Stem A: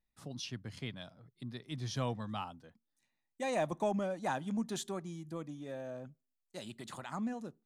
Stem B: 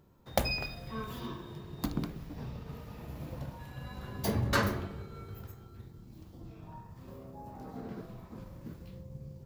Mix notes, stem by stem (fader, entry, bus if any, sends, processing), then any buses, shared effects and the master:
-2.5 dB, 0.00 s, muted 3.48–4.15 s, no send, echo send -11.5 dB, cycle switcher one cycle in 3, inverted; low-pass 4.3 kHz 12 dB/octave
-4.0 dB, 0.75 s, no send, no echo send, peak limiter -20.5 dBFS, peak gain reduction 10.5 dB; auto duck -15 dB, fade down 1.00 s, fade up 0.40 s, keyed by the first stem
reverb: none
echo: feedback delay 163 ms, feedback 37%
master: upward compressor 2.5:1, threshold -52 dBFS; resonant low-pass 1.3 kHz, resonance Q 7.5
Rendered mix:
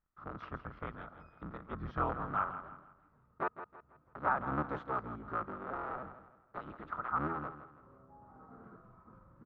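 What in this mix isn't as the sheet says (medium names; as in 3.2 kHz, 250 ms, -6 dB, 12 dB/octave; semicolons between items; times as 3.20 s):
stem B -4.0 dB -> -14.0 dB; master: missing upward compressor 2.5:1, threshold -52 dBFS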